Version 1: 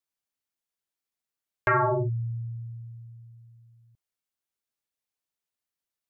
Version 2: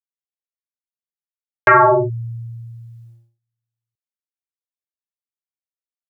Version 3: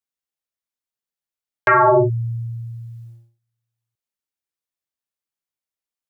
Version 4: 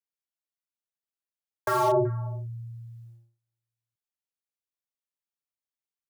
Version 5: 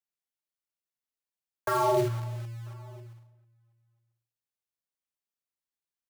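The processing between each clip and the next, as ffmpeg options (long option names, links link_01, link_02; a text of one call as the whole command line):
ffmpeg -i in.wav -filter_complex "[0:a]agate=range=-33dB:threshold=-46dB:ratio=16:detection=peak,acrossover=split=330[link_01][link_02];[link_02]dynaudnorm=framelen=230:gausssize=13:maxgain=15.5dB[link_03];[link_01][link_03]amix=inputs=2:normalize=0,volume=3dB" out.wav
ffmpeg -i in.wav -af "alimiter=limit=-9dB:level=0:latency=1,volume=3.5dB" out.wav
ffmpeg -i in.wav -filter_complex "[0:a]acrossover=split=170|430|1400[link_01][link_02][link_03][link_04];[link_03]aecho=1:1:380:0.1[link_05];[link_04]aeval=exprs='(mod(22.4*val(0)+1,2)-1)/22.4':channel_layout=same[link_06];[link_01][link_02][link_05][link_06]amix=inputs=4:normalize=0,volume=-8.5dB" out.wav
ffmpeg -i in.wav -filter_complex "[0:a]acrossover=split=650|6500[link_01][link_02][link_03];[link_01]acrusher=bits=3:mode=log:mix=0:aa=0.000001[link_04];[link_04][link_02][link_03]amix=inputs=3:normalize=0,asplit=2[link_05][link_06];[link_06]adelay=991.3,volume=-27dB,highshelf=frequency=4000:gain=-22.3[link_07];[link_05][link_07]amix=inputs=2:normalize=0,volume=-2dB" out.wav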